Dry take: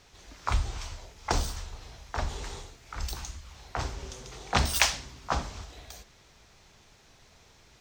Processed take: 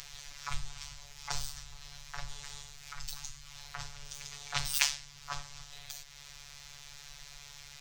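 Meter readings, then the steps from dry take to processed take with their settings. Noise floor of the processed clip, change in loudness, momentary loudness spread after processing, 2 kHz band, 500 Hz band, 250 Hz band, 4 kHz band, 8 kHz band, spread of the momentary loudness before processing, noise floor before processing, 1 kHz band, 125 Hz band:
−52 dBFS, −7.0 dB, 17 LU, −6.0 dB, −17.5 dB, below −15 dB, −3.0 dB, −2.0 dB, 19 LU, −59 dBFS, −11.0 dB, −13.5 dB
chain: upward compression, threshold −30 dBFS
low-shelf EQ 140 Hz +8 dB
backwards echo 604 ms −23.5 dB
phases set to zero 143 Hz
guitar amp tone stack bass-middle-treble 10-0-10

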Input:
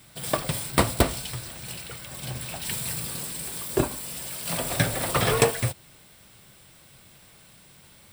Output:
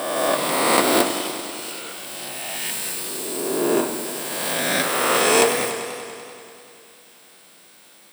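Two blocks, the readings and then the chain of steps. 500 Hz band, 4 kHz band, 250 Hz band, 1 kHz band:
+7.5 dB, +7.0 dB, +5.5 dB, +8.0 dB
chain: peak hold with a rise ahead of every peak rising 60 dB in 1.96 s
high-pass filter 240 Hz 24 dB per octave
feedback echo with a swinging delay time 97 ms, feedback 78%, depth 93 cents, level −10.5 dB

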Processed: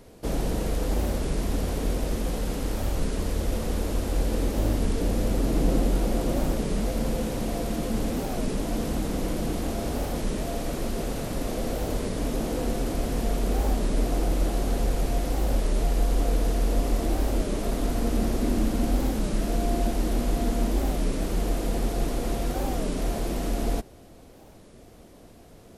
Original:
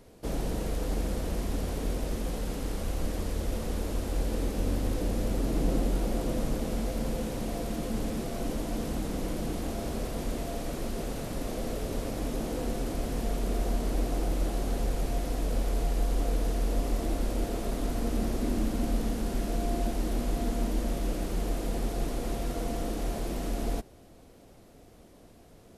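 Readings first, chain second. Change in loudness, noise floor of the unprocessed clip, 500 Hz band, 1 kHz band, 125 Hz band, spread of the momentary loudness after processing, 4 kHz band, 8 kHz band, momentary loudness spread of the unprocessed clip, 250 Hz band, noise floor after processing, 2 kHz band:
+4.5 dB, −54 dBFS, +4.5 dB, +4.5 dB, +4.5 dB, 4 LU, +4.5 dB, +4.5 dB, 4 LU, +4.5 dB, −49 dBFS, +4.5 dB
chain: wow of a warped record 33 1/3 rpm, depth 250 cents
level +4.5 dB

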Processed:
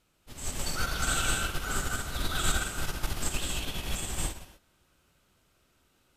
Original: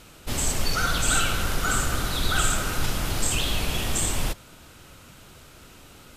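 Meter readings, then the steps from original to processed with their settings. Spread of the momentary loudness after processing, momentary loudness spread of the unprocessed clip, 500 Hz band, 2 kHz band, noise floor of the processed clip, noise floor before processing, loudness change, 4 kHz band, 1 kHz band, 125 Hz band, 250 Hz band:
8 LU, 5 LU, −7.5 dB, −5.5 dB, −70 dBFS, −49 dBFS, −6.5 dB, −6.5 dB, −7.0 dB, −7.0 dB, −7.5 dB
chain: reverb whose tail is shaped and stops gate 270 ms rising, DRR 0 dB
expander for the loud parts 2.5 to 1, over −29 dBFS
level −3.5 dB

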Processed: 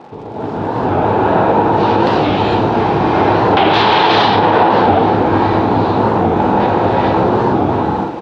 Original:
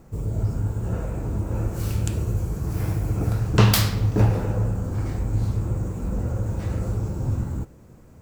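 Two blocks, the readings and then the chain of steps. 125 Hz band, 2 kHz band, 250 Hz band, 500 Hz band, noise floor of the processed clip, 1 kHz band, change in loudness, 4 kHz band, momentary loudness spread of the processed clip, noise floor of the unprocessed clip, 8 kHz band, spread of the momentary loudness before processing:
+1.0 dB, +17.5 dB, +14.5 dB, +20.0 dB, −25 dBFS, +26.0 dB, +12.0 dB, +13.0 dB, 6 LU, −49 dBFS, can't be measured, 8 LU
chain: wave folding −19.5 dBFS
downward compressor 5 to 1, threshold −33 dBFS, peak gain reduction 10 dB
loudspeaker in its box 380–3,900 Hz, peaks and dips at 560 Hz −4 dB, 850 Hz +10 dB, 1,300 Hz −3 dB, 2,100 Hz −5 dB, 3,700 Hz +5 dB
automatic gain control gain up to 9.5 dB
surface crackle 170 per second −50 dBFS
high-frequency loss of the air 140 metres
single-tap delay 791 ms −20.5 dB
reverb whose tail is shaped and stops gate 480 ms rising, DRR −5 dB
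boost into a limiter +20 dB
wow of a warped record 45 rpm, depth 160 cents
level −1 dB

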